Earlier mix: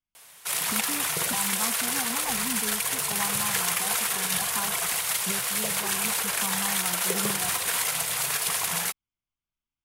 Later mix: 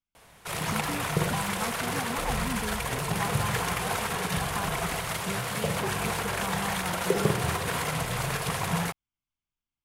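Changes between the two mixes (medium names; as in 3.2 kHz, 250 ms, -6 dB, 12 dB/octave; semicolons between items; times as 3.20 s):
background: add tilt EQ -4 dB/octave; reverb: on, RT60 2.3 s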